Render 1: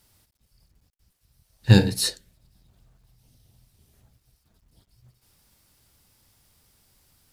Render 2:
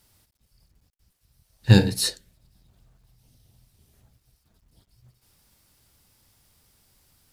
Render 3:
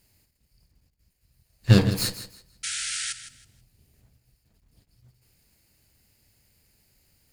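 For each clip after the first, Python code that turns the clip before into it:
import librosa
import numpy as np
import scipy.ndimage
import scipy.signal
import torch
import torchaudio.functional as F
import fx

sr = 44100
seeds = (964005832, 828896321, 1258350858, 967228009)

y1 = x
y2 = fx.lower_of_two(y1, sr, delay_ms=0.43)
y2 = fx.spec_paint(y2, sr, seeds[0], shape='noise', start_s=2.63, length_s=0.5, low_hz=1300.0, high_hz=10000.0, level_db=-30.0)
y2 = fx.echo_feedback(y2, sr, ms=161, feedback_pct=25, wet_db=-12.5)
y2 = F.gain(torch.from_numpy(y2), -1.0).numpy()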